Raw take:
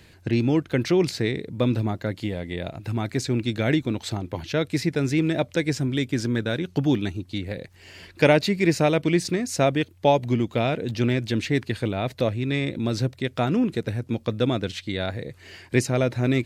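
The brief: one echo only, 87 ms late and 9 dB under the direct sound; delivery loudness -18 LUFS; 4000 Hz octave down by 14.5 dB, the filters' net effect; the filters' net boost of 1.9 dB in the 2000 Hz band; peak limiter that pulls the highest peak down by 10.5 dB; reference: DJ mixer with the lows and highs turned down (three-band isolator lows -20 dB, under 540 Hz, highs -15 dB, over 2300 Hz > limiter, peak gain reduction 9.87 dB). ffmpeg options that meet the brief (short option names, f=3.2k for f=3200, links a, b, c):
-filter_complex "[0:a]equalizer=f=2k:t=o:g=8,equalizer=f=4k:t=o:g=-8,alimiter=limit=-12dB:level=0:latency=1,acrossover=split=540 2300:gain=0.1 1 0.178[a][b][c];[a][b][c]amix=inputs=3:normalize=0,aecho=1:1:87:0.355,volume=19.5dB,alimiter=limit=-6.5dB:level=0:latency=1"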